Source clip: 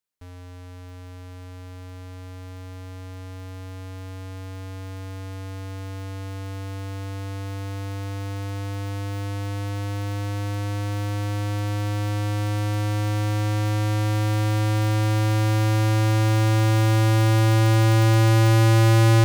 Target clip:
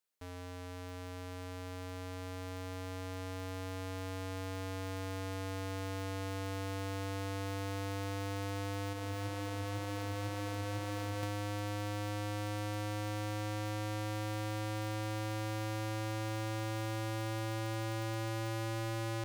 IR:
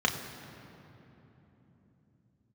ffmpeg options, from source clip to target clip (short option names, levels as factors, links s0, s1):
-filter_complex "[0:a]equalizer=f=530:w=1.5:g=2,asettb=1/sr,asplit=3[s0][s1][s2];[s0]atrim=end=8.934[s3];[s1]atrim=start=8.93:end=11.23,asetpts=PTS-STARTPTS,afade=t=in:d=0.004:c=qsin,afade=t=out:st=2.296:d=0.004:c=qsin,flanger=delay=3.4:depth=8.4:regen=67:speed=2:shape=sinusoidal[s4];[s2]atrim=start=11.226[s5];[s3][s4]acrossfade=d=0.004:c1=hsin:c2=qsin[s6];[s6][s5]acrossfade=d=0.004:c1=qsin:c2=hsin,lowshelf=f=150:g=-10,acompressor=threshold=0.0224:ratio=16"